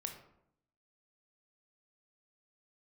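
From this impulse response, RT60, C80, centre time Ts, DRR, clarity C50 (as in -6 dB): 0.75 s, 10.5 dB, 20 ms, 3.5 dB, 7.5 dB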